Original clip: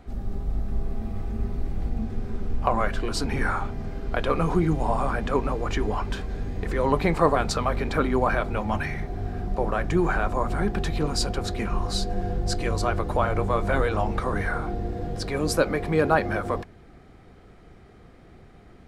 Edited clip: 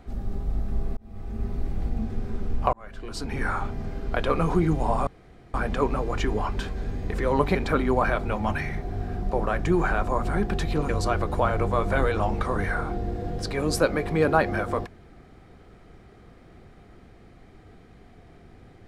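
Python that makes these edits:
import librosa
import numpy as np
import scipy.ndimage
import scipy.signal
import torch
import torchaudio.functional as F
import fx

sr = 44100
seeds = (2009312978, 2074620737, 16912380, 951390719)

y = fx.edit(x, sr, fx.fade_in_span(start_s=0.97, length_s=0.74, curve='qsin'),
    fx.fade_in_span(start_s=2.73, length_s=0.93),
    fx.insert_room_tone(at_s=5.07, length_s=0.47),
    fx.cut(start_s=7.08, length_s=0.72),
    fx.cut(start_s=11.14, length_s=1.52), tone=tone)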